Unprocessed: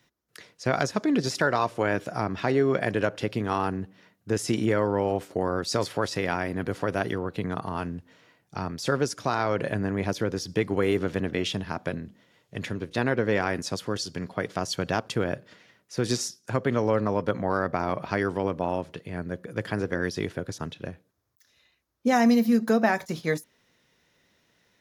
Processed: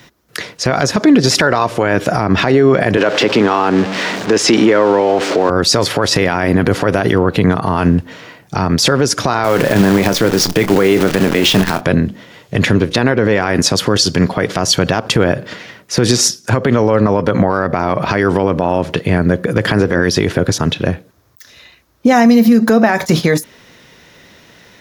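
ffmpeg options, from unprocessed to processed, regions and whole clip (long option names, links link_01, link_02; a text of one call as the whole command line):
ffmpeg -i in.wav -filter_complex "[0:a]asettb=1/sr,asplit=3[link_01][link_02][link_03];[link_01]atrim=end=2.974[link_04];[link_02]atrim=start=2.97:end=5.5,asetpts=PTS-STARTPTS,afade=type=in:duration=0.004:curve=qsin,afade=type=out:start_time=2.526:duration=0.004:curve=qsin,aeval=exprs='val(0)+0.5*0.0168*sgn(val(0))':channel_layout=same,acrossover=split=210 7100:gain=0.1 1 0.0708[link_05][link_06][link_07];[link_05][link_06][link_07]amix=inputs=3:normalize=0[link_08];[link_03]atrim=start=5.496[link_09];[link_04][link_08]acrossfade=duration=0.004:curve1=hsin:curve2=qsin[link_10];[link_10][link_09]acrossfade=duration=0.004:curve1=qsin:curve2=hsin,asettb=1/sr,asplit=3[link_11][link_12][link_13];[link_11]atrim=end=9.444[link_14];[link_12]atrim=start=9.44:end=11.81,asetpts=PTS-STARTPTS,afade=type=in:duration=0.004:curve=qsin,afade=type=out:start_time=2.366:duration=0.004:curve=qsin,highpass=130,acrusher=bits=7:dc=4:mix=0:aa=0.000001,asplit=2[link_15][link_16];[link_16]adelay=26,volume=-13.5dB[link_17];[link_15][link_17]amix=inputs=2:normalize=0,atrim=end_sample=104517[link_18];[link_13]atrim=start=11.806[link_19];[link_14][link_18]acrossfade=duration=0.004:curve1=hsin:curve2=qsin[link_20];[link_20][link_19]acrossfade=duration=0.004:curve1=qsin:curve2=hsin,equalizer=frequency=10000:width_type=o:width=1.4:gain=-3.5,acompressor=threshold=-25dB:ratio=6,alimiter=level_in=24.5dB:limit=-1dB:release=50:level=0:latency=1,volume=-1dB" out.wav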